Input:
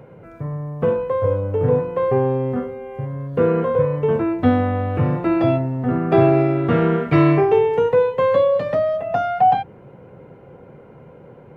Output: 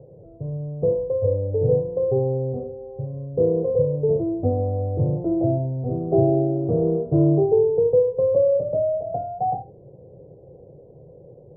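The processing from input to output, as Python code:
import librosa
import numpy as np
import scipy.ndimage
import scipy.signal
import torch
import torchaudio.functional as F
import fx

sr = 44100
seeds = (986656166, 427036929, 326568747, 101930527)

y = scipy.signal.sosfilt(scipy.signal.butter(6, 630.0, 'lowpass', fs=sr, output='sos'), x)
y = fx.peak_eq(y, sr, hz=230.0, db=-13.0, octaves=0.67)
y = y + 10.0 ** (-16.0 / 20.0) * np.pad(y, (int(75 * sr / 1000.0), 0))[:len(y)]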